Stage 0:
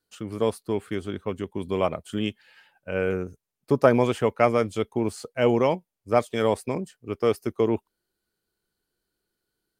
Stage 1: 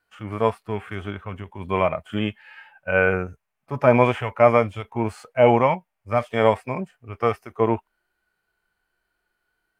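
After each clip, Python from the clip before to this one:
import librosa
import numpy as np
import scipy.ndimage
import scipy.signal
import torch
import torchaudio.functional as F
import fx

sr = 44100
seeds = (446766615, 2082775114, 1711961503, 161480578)

y = fx.band_shelf(x, sr, hz=1300.0, db=13.5, octaves=2.5)
y = fx.hpss(y, sr, part='percussive', gain_db=-16)
y = fx.low_shelf(y, sr, hz=110.0, db=8.0)
y = F.gain(torch.from_numpy(y), 1.5).numpy()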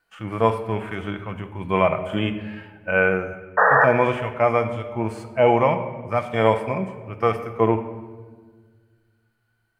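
y = fx.spec_paint(x, sr, seeds[0], shape='noise', start_s=3.57, length_s=0.28, low_hz=420.0, high_hz=1900.0, level_db=-13.0)
y = fx.room_shoebox(y, sr, seeds[1], volume_m3=1500.0, walls='mixed', distance_m=0.73)
y = fx.rider(y, sr, range_db=4, speed_s=2.0)
y = F.gain(torch.from_numpy(y), -2.0).numpy()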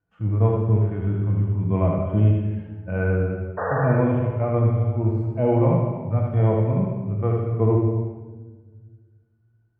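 y = fx.bandpass_q(x, sr, hz=110.0, q=1.3)
y = y + 10.0 ** (-4.5 / 20.0) * np.pad(y, (int(77 * sr / 1000.0), 0))[:len(y)]
y = fx.rev_gated(y, sr, seeds[2], gate_ms=460, shape='falling', drr_db=2.5)
y = F.gain(torch.from_numpy(y), 8.5).numpy()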